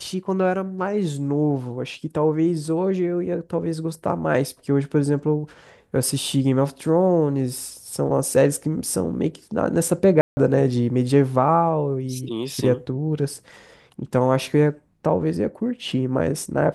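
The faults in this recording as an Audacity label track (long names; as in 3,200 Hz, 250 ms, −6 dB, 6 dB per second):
10.210000	10.370000	drop-out 160 ms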